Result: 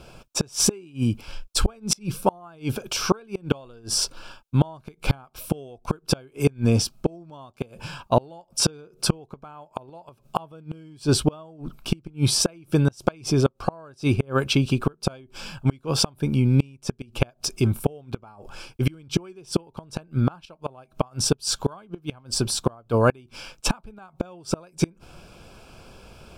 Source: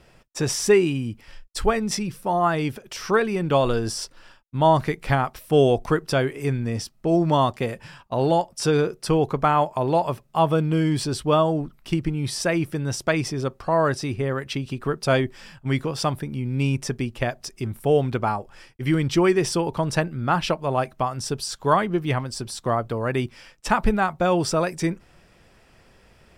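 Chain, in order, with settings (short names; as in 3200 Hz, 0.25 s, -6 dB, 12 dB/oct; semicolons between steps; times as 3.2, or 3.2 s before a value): flipped gate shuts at -15 dBFS, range -32 dB; Butterworth band-stop 1900 Hz, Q 3.5; gain +8 dB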